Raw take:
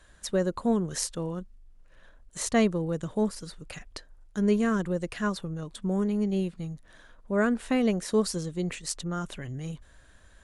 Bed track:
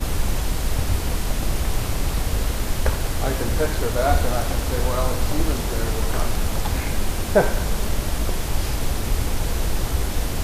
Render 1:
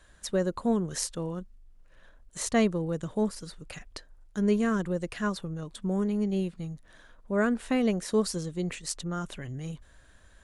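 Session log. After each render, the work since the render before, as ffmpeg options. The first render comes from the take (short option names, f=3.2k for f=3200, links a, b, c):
-af "volume=-1dB"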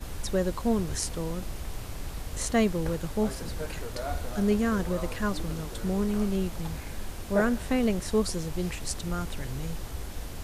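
-filter_complex "[1:a]volume=-14dB[a];[0:a][a]amix=inputs=2:normalize=0"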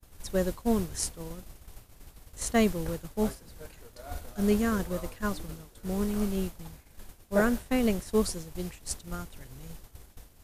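-af "highshelf=f=9.5k:g=10,agate=range=-33dB:threshold=-23dB:ratio=3:detection=peak"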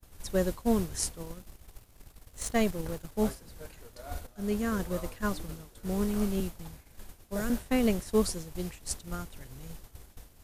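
-filter_complex "[0:a]asettb=1/sr,asplit=3[a][b][c];[a]atrim=end=1.234[d];[b]atrim=start=1.23:end=3.12,asetpts=PTS-STARTPTS,afade=t=in:d=0.004:c=qsin,afade=t=out:st=1.886:d=0.004:c=qsin,aeval=exprs='if(lt(val(0),0),0.447*val(0),val(0))':c=same[e];[c]atrim=start=3.116[f];[d][e]acrossfade=d=0.004:c1=hsin:c2=qsin[g];[g][f]acrossfade=d=0.004:c1=qsin:c2=hsin,asettb=1/sr,asplit=3[h][i][j];[h]atrim=end=6.404[k];[i]atrim=start=6.4:end=7.5,asetpts=PTS-STARTPTS,afade=t=in:d=0.004:c=qsin,afade=t=out:st=1.096:d=0.004:c=qsin,acrossover=split=150|3000[l][m][n];[m]acompressor=threshold=-31dB:ratio=6:attack=3.2:release=140:knee=2.83:detection=peak[o];[l][o][n]amix=inputs=3:normalize=0[p];[j]atrim=start=7.496[q];[k][p]acrossfade=d=0.004:c1=hsin:c2=qsin[r];[r][q]acrossfade=d=0.004:c1=qsin:c2=hsin,asplit=2[s][t];[s]atrim=end=4.27,asetpts=PTS-STARTPTS,afade=t=out:st=4.266:d=0.004:c=hsin:silence=0.223872[u];[t]atrim=start=4.27,asetpts=PTS-STARTPTS,afade=t=in:d=0.67:silence=0.223872[v];[u][v]concat=n=2:v=0:a=1"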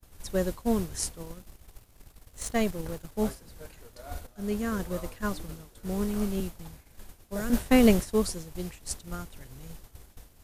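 -filter_complex "[0:a]asplit=3[a][b][c];[a]afade=t=out:st=7.52:d=0.02[d];[b]acontrast=89,afade=t=in:st=7.52:d=0.02,afade=t=out:st=8.04:d=0.02[e];[c]afade=t=in:st=8.04:d=0.02[f];[d][e][f]amix=inputs=3:normalize=0"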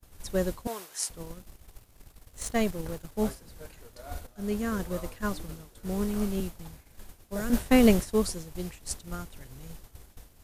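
-filter_complex "[0:a]asettb=1/sr,asplit=3[a][b][c];[a]atrim=end=0.674[d];[b]atrim=start=0.67:end=1.1,asetpts=PTS-STARTPTS,afade=t=in:d=0.004:c=qsin,afade=t=out:st=0.426:d=0.004:c=qsin,highpass=750[e];[c]atrim=start=1.096[f];[d][e]acrossfade=d=0.004:c1=hsin:c2=qsin[g];[g][f]acrossfade=d=0.004:c1=qsin:c2=hsin,asettb=1/sr,asplit=3[h][i][j];[h]atrim=end=6.684[k];[i]atrim=start=6.68:end=7.35,asetpts=PTS-STARTPTS,afade=t=in:d=0.004:c=qsin,afade=t=out:st=0.666:d=0.004:c=qsin,acrusher=bits=9:mode=log:mix=0:aa=0.000001[l];[j]atrim=start=7.346[m];[k][l]acrossfade=d=0.004:c1=hsin:c2=qsin[n];[n][m]acrossfade=d=0.004:c1=qsin:c2=hsin"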